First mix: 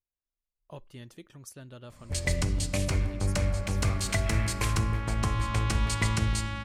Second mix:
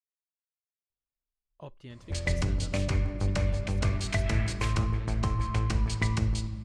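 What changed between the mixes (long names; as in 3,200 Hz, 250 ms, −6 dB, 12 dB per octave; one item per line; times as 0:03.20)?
speech: entry +0.90 s
second sound: muted
master: add high-frequency loss of the air 79 metres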